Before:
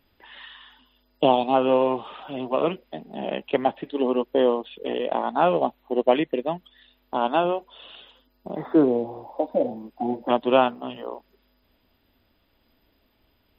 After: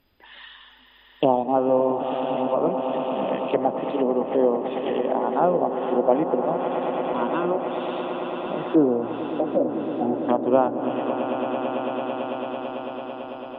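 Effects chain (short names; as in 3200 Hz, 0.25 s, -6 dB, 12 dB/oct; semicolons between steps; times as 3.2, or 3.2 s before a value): spectral repair 6.78–7.48, 420–910 Hz before; swelling echo 0.111 s, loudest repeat 8, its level -13.5 dB; treble ducked by the level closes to 1000 Hz, closed at -17.5 dBFS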